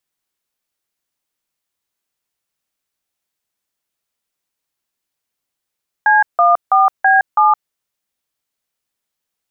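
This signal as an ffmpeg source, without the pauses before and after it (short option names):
-f lavfi -i "aevalsrc='0.299*clip(min(mod(t,0.328),0.166-mod(t,0.328))/0.002,0,1)*(eq(floor(t/0.328),0)*(sin(2*PI*852*mod(t,0.328))+sin(2*PI*1633*mod(t,0.328)))+eq(floor(t/0.328),1)*(sin(2*PI*697*mod(t,0.328))+sin(2*PI*1209*mod(t,0.328)))+eq(floor(t/0.328),2)*(sin(2*PI*770*mod(t,0.328))+sin(2*PI*1209*mod(t,0.328)))+eq(floor(t/0.328),3)*(sin(2*PI*770*mod(t,0.328))+sin(2*PI*1633*mod(t,0.328)))+eq(floor(t/0.328),4)*(sin(2*PI*852*mod(t,0.328))+sin(2*PI*1209*mod(t,0.328))))':d=1.64:s=44100"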